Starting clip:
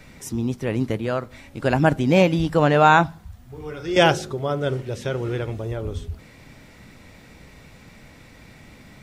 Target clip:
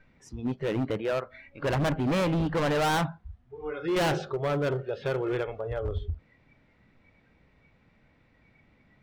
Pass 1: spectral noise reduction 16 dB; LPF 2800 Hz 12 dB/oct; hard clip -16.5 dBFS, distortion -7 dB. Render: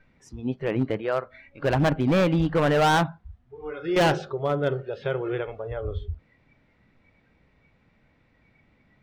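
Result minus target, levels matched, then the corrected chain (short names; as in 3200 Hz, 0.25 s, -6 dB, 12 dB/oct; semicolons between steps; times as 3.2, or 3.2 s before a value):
hard clip: distortion -5 dB
spectral noise reduction 16 dB; LPF 2800 Hz 12 dB/oct; hard clip -23.5 dBFS, distortion -3 dB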